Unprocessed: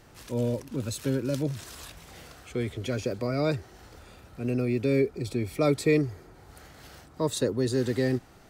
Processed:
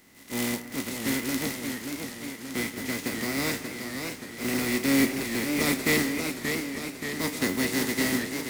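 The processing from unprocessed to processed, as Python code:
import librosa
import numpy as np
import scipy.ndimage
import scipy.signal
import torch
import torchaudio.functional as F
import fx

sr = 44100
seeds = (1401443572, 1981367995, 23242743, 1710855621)

p1 = fx.spec_flatten(x, sr, power=0.27)
p2 = fx.comb_fb(p1, sr, f0_hz=92.0, decay_s=0.29, harmonics='all', damping=0.0, mix_pct=70)
p3 = fx.small_body(p2, sr, hz=(240.0, 2000.0), ring_ms=30, db=16)
p4 = p3 + fx.echo_alternate(p3, sr, ms=183, hz=2300.0, feedback_pct=58, wet_db=-14.0, dry=0)
y = fx.echo_warbled(p4, sr, ms=580, feedback_pct=63, rate_hz=2.8, cents=132, wet_db=-6.0)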